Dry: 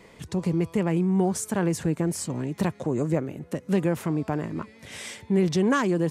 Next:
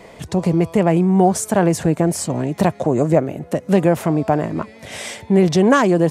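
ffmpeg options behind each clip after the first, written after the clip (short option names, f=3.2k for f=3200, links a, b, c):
-af "equalizer=f=670:t=o:w=0.6:g=9.5,volume=7.5dB"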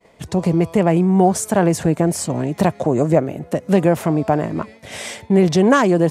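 -af "agate=range=-33dB:threshold=-33dB:ratio=3:detection=peak"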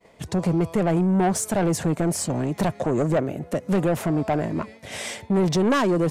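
-af "asoftclip=type=tanh:threshold=-13.5dB,volume=-2dB"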